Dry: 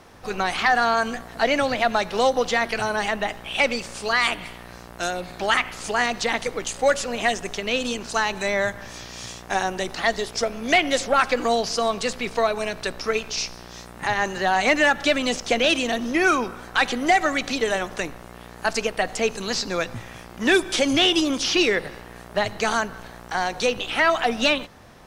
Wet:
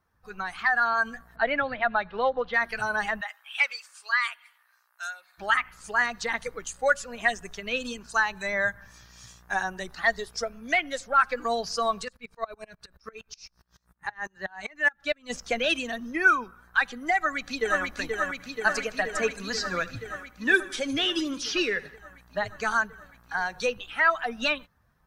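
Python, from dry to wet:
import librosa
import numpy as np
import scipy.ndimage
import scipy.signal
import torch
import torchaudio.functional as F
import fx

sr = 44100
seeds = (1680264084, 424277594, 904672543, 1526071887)

y = fx.lowpass(x, sr, hz=3900.0, slope=24, at=(1.36, 2.54))
y = fx.highpass(y, sr, hz=1000.0, slope=12, at=(3.21, 5.38))
y = fx.tremolo_decay(y, sr, direction='swelling', hz=fx.line((12.04, 12.0), (15.29, 3.8)), depth_db=26, at=(12.04, 15.29), fade=0.02)
y = fx.echo_throw(y, sr, start_s=17.17, length_s=0.66, ms=480, feedback_pct=85, wet_db=-3.0)
y = fx.echo_feedback(y, sr, ms=77, feedback_pct=60, wet_db=-14, at=(18.38, 21.95), fade=0.02)
y = fx.bin_expand(y, sr, power=1.5)
y = fx.peak_eq(y, sr, hz=1500.0, db=12.0, octaves=0.9)
y = fx.rider(y, sr, range_db=3, speed_s=0.5)
y = y * librosa.db_to_amplitude(-6.0)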